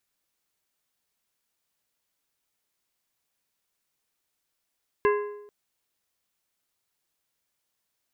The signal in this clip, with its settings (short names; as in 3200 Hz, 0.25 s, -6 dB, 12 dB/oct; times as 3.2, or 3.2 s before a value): metal hit plate, length 0.44 s, lowest mode 414 Hz, modes 5, decay 0.86 s, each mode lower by 5 dB, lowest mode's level -17.5 dB